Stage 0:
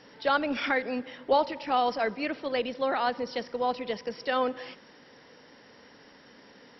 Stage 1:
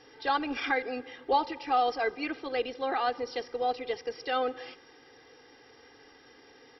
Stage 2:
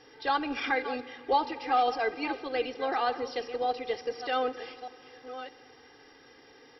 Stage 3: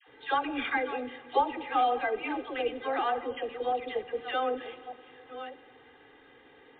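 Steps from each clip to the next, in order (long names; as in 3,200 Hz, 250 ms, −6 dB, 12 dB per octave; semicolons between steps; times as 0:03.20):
comb filter 2.5 ms, depth 86%; level −4 dB
delay that plays each chunk backwards 610 ms, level −12 dB; on a send at −16 dB: convolution reverb RT60 2.6 s, pre-delay 3 ms
all-pass dispersion lows, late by 84 ms, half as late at 770 Hz; MP3 64 kbit/s 8,000 Hz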